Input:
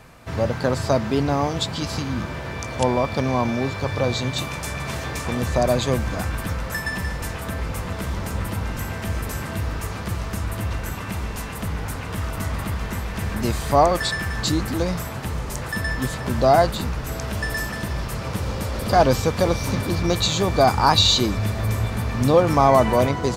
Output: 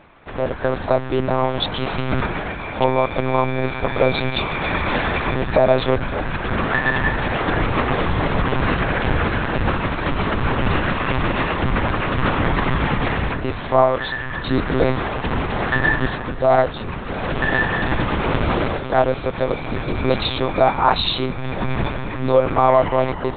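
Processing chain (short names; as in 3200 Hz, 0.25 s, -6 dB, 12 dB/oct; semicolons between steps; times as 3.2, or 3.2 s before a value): high shelf 2200 Hz -3 dB; monotone LPC vocoder at 8 kHz 130 Hz; AGC gain up to 13 dB; low shelf 210 Hz -7.5 dB; gain +1 dB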